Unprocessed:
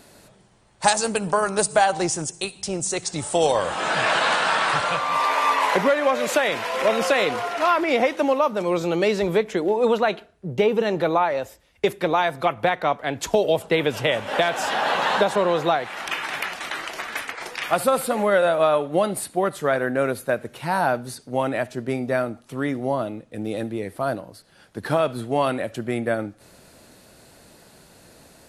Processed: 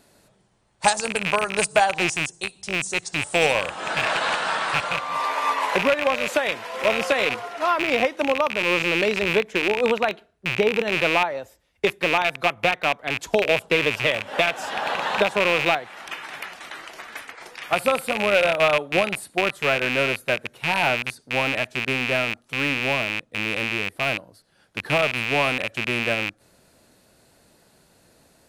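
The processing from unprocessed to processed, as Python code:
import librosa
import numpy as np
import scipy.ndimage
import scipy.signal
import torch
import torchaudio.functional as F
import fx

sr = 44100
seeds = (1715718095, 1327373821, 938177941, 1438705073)

y = fx.rattle_buzz(x, sr, strikes_db=-34.0, level_db=-8.0)
y = fx.upward_expand(y, sr, threshold_db=-28.0, expansion=1.5)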